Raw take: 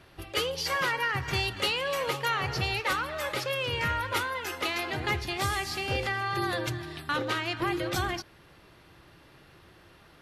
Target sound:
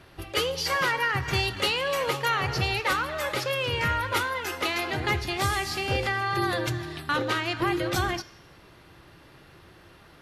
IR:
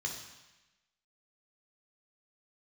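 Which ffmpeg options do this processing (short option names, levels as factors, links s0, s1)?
-filter_complex "[0:a]asplit=2[s0][s1];[s1]tiltshelf=f=970:g=-5.5[s2];[1:a]atrim=start_sample=2205[s3];[s2][s3]afir=irnorm=-1:irlink=0,volume=0.0944[s4];[s0][s4]amix=inputs=2:normalize=0,volume=1.5"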